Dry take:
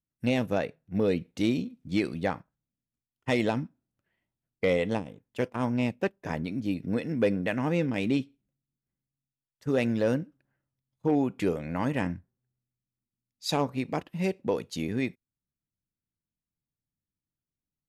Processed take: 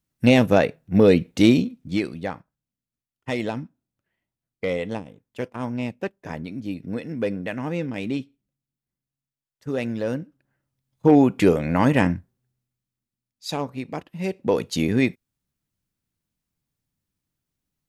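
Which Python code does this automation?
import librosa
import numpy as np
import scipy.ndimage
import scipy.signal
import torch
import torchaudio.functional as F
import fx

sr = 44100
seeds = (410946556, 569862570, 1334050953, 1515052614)

y = fx.gain(x, sr, db=fx.line((1.53, 11.0), (2.18, -0.5), (10.1, -0.5), (11.1, 10.5), (12.0, 10.5), (13.46, -0.5), (14.18, -0.5), (14.62, 9.5)))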